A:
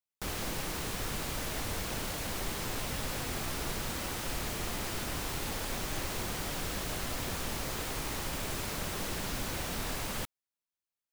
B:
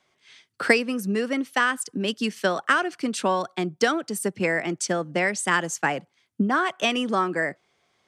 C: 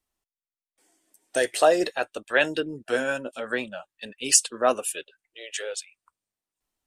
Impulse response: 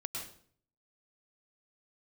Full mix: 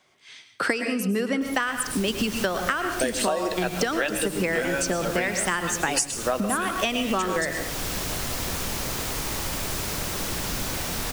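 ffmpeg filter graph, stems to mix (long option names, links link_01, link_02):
-filter_complex "[0:a]equalizer=frequency=5700:width_type=o:width=0.77:gain=2.5,dynaudnorm=framelen=160:gausssize=7:maxgain=12dB,adelay=1200,volume=-9.5dB,asplit=2[link_01][link_02];[link_02]volume=-5.5dB[link_03];[1:a]volume=1dB,asplit=3[link_04][link_05][link_06];[link_05]volume=-3dB[link_07];[2:a]adelay=1650,volume=2.5dB,asplit=2[link_08][link_09];[link_09]volume=-6.5dB[link_10];[link_06]apad=whole_len=543687[link_11];[link_01][link_11]sidechaincompress=threshold=-29dB:ratio=8:attack=16:release=506[link_12];[3:a]atrim=start_sample=2205[link_13];[link_03][link_07][link_10]amix=inputs=3:normalize=0[link_14];[link_14][link_13]afir=irnorm=-1:irlink=0[link_15];[link_12][link_04][link_08][link_15]amix=inputs=4:normalize=0,highshelf=frequency=7800:gain=4,acompressor=threshold=-21dB:ratio=12"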